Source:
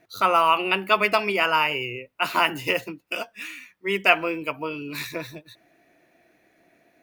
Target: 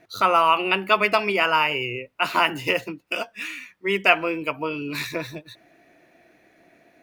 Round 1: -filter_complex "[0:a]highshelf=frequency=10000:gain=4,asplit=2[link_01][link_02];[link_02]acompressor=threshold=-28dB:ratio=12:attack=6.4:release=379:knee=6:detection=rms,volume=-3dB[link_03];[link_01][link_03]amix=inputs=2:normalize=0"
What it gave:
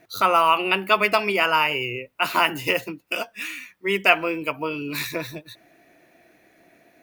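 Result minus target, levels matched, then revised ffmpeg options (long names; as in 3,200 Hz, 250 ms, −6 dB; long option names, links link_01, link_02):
8,000 Hz band +3.5 dB
-filter_complex "[0:a]highshelf=frequency=10000:gain=-7.5,asplit=2[link_01][link_02];[link_02]acompressor=threshold=-28dB:ratio=12:attack=6.4:release=379:knee=6:detection=rms,volume=-3dB[link_03];[link_01][link_03]amix=inputs=2:normalize=0"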